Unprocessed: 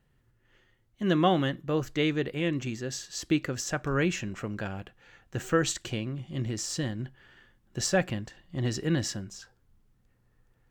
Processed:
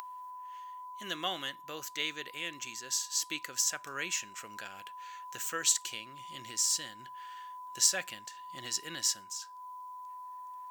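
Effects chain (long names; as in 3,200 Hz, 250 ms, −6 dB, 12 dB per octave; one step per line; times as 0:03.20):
steady tone 1,000 Hz −39 dBFS
first difference
upward compression, threshold −46 dBFS
level +7 dB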